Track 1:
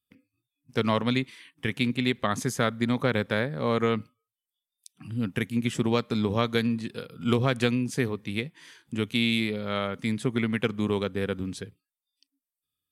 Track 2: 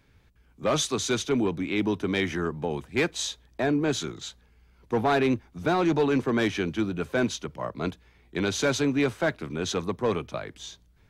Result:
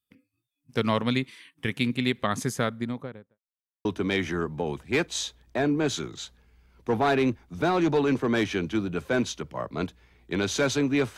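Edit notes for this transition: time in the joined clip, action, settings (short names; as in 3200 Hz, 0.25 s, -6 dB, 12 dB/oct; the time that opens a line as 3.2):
track 1
2.43–3.39 studio fade out
3.39–3.85 mute
3.85 switch to track 2 from 1.89 s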